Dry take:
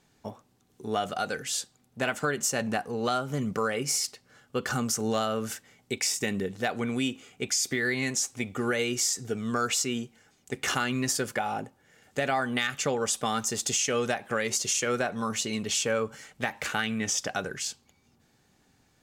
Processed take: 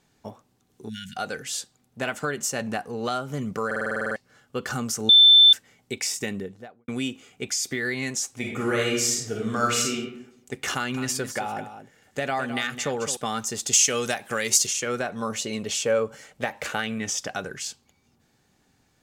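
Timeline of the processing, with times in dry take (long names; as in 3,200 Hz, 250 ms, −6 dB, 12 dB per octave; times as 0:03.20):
0:00.89–0:01.17: time-frequency box erased 250–1,400 Hz
0:03.66: stutter in place 0.05 s, 10 plays
0:05.09–0:05.53: beep over 3,540 Hz −9.5 dBFS
0:06.20–0:06.88: fade out and dull
0:08.38–0:09.94: thrown reverb, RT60 0.85 s, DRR −2 dB
0:10.73–0:13.17: single-tap delay 211 ms −10.5 dB
0:13.73–0:14.67: high-shelf EQ 3,400 Hz +12 dB
0:15.21–0:16.98: parametric band 550 Hz +7 dB 0.67 octaves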